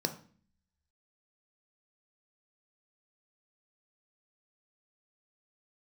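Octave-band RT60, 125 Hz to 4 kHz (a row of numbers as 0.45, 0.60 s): 0.75, 0.80, 0.45, 0.40, 0.45, 0.45 s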